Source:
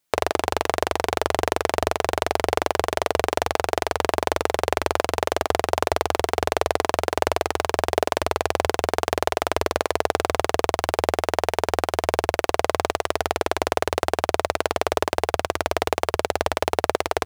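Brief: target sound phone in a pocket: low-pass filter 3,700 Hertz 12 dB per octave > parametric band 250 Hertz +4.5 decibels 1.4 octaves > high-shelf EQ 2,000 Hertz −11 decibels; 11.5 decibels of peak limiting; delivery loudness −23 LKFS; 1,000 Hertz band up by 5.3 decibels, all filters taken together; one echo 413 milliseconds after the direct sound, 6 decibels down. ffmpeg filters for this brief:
ffmpeg -i in.wav -af "equalizer=frequency=1000:width_type=o:gain=9,alimiter=limit=-9dB:level=0:latency=1,lowpass=3700,equalizer=frequency=250:width_type=o:width=1.4:gain=4.5,highshelf=frequency=2000:gain=-11,aecho=1:1:413:0.501,volume=5dB" out.wav

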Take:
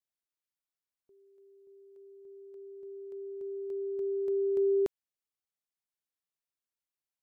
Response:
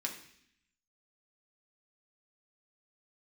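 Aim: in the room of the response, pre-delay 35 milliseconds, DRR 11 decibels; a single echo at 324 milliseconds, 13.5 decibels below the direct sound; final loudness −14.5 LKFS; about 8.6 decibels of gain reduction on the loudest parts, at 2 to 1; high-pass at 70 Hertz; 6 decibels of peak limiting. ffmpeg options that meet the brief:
-filter_complex "[0:a]highpass=70,acompressor=threshold=-41dB:ratio=2,alimiter=level_in=12dB:limit=-24dB:level=0:latency=1,volume=-12dB,aecho=1:1:324:0.211,asplit=2[link_01][link_02];[1:a]atrim=start_sample=2205,adelay=35[link_03];[link_02][link_03]afir=irnorm=-1:irlink=0,volume=-12.5dB[link_04];[link_01][link_04]amix=inputs=2:normalize=0,volume=29dB"

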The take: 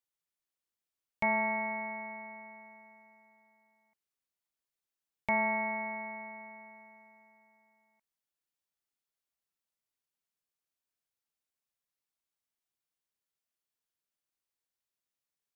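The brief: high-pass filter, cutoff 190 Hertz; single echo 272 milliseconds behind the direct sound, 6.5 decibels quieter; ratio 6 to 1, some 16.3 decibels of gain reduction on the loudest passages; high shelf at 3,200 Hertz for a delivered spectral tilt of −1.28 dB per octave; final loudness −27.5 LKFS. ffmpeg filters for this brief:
ffmpeg -i in.wav -af "highpass=190,highshelf=frequency=3200:gain=6,acompressor=threshold=-43dB:ratio=6,aecho=1:1:272:0.473,volume=17dB" out.wav

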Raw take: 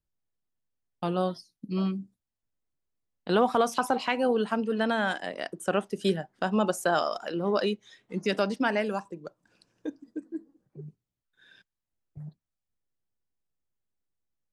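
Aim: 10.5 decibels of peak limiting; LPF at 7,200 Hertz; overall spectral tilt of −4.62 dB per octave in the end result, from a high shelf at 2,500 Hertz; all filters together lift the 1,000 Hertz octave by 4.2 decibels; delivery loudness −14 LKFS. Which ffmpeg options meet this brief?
ffmpeg -i in.wav -af "lowpass=7200,equalizer=frequency=1000:width_type=o:gain=4.5,highshelf=frequency=2500:gain=7.5,volume=16.5dB,alimiter=limit=-1dB:level=0:latency=1" out.wav

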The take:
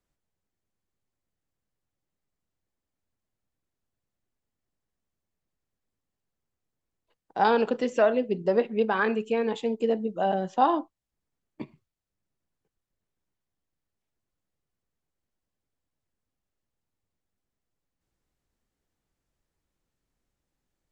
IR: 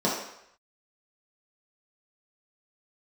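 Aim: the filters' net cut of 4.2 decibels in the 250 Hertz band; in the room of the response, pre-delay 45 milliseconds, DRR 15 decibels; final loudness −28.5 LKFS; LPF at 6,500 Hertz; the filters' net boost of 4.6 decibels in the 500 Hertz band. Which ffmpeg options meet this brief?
-filter_complex "[0:a]lowpass=6500,equalizer=frequency=250:width_type=o:gain=-7,equalizer=frequency=500:width_type=o:gain=7,asplit=2[link_01][link_02];[1:a]atrim=start_sample=2205,adelay=45[link_03];[link_02][link_03]afir=irnorm=-1:irlink=0,volume=-28.5dB[link_04];[link_01][link_04]amix=inputs=2:normalize=0,volume=-6.5dB"

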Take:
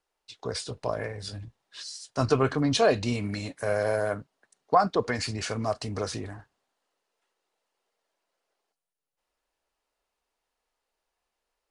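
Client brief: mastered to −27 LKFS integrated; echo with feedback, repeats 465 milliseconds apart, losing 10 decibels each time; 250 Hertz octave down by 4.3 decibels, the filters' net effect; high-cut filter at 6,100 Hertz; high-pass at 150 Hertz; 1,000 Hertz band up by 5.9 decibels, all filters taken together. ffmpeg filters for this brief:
ffmpeg -i in.wav -af "highpass=150,lowpass=6100,equalizer=frequency=250:width_type=o:gain=-5,equalizer=frequency=1000:width_type=o:gain=8.5,aecho=1:1:465|930|1395|1860:0.316|0.101|0.0324|0.0104,volume=-1.5dB" out.wav

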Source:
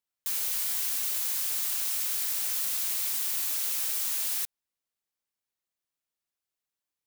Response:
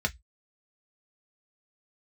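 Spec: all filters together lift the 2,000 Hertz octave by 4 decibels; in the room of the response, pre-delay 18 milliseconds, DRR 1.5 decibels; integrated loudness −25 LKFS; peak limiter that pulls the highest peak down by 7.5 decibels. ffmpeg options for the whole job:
-filter_complex "[0:a]equalizer=frequency=2000:width_type=o:gain=5,alimiter=limit=-24dB:level=0:latency=1,asplit=2[link_01][link_02];[1:a]atrim=start_sample=2205,adelay=18[link_03];[link_02][link_03]afir=irnorm=-1:irlink=0,volume=-9.5dB[link_04];[link_01][link_04]amix=inputs=2:normalize=0,volume=5.5dB"

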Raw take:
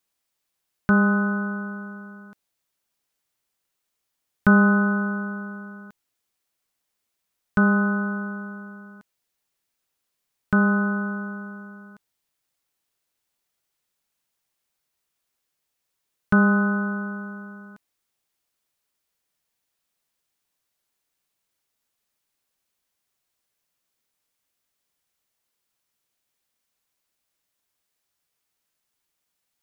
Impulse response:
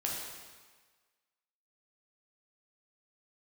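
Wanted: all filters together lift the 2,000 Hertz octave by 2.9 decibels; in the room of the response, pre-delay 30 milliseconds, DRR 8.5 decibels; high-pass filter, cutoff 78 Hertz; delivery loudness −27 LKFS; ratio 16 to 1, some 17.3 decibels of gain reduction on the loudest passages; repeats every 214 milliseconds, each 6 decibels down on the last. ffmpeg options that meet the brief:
-filter_complex "[0:a]highpass=78,equalizer=frequency=2000:width_type=o:gain=5,acompressor=threshold=-28dB:ratio=16,aecho=1:1:214|428|642|856|1070|1284:0.501|0.251|0.125|0.0626|0.0313|0.0157,asplit=2[link_01][link_02];[1:a]atrim=start_sample=2205,adelay=30[link_03];[link_02][link_03]afir=irnorm=-1:irlink=0,volume=-12.5dB[link_04];[link_01][link_04]amix=inputs=2:normalize=0,volume=2dB"

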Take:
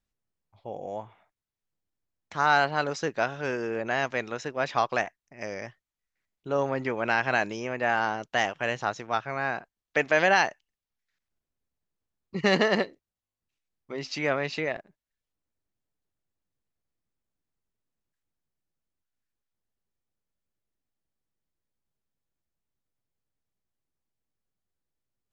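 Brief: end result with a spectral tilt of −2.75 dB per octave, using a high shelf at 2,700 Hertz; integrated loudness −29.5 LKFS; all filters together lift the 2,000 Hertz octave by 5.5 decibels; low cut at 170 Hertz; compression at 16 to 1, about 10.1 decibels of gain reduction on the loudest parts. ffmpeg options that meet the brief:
ffmpeg -i in.wav -af "highpass=170,equalizer=frequency=2000:width_type=o:gain=4,highshelf=frequency=2700:gain=8,acompressor=threshold=-23dB:ratio=16,volume=0.5dB" out.wav

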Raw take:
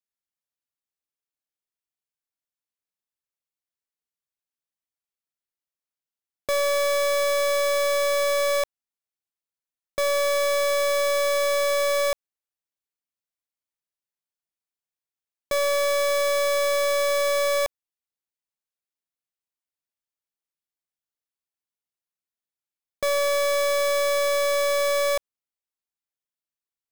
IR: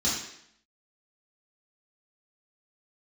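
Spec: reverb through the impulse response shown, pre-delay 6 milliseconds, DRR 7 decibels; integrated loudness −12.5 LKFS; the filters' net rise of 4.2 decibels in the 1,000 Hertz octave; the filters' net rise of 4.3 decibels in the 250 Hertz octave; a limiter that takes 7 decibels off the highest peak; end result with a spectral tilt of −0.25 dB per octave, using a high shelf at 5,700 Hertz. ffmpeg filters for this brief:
-filter_complex "[0:a]equalizer=frequency=250:width_type=o:gain=5.5,equalizer=frequency=1000:width_type=o:gain=4.5,highshelf=frequency=5700:gain=5,alimiter=limit=-23.5dB:level=0:latency=1,asplit=2[link_01][link_02];[1:a]atrim=start_sample=2205,adelay=6[link_03];[link_02][link_03]afir=irnorm=-1:irlink=0,volume=-16.5dB[link_04];[link_01][link_04]amix=inputs=2:normalize=0,volume=14.5dB"

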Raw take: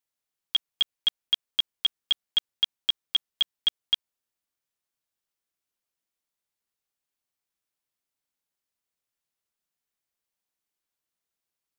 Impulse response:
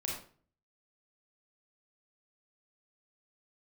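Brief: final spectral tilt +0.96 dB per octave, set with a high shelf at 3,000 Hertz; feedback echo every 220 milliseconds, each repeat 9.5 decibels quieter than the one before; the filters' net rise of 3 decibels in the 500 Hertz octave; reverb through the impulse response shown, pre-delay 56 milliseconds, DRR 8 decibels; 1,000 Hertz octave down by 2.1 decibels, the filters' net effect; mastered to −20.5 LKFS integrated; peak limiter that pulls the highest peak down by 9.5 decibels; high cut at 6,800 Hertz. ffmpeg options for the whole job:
-filter_complex "[0:a]lowpass=6800,equalizer=frequency=500:width_type=o:gain=5,equalizer=frequency=1000:width_type=o:gain=-5,highshelf=frequency=3000:gain=6,alimiter=limit=-21dB:level=0:latency=1,aecho=1:1:220|440|660|880:0.335|0.111|0.0365|0.012,asplit=2[link_01][link_02];[1:a]atrim=start_sample=2205,adelay=56[link_03];[link_02][link_03]afir=irnorm=-1:irlink=0,volume=-10dB[link_04];[link_01][link_04]amix=inputs=2:normalize=0,volume=12dB"

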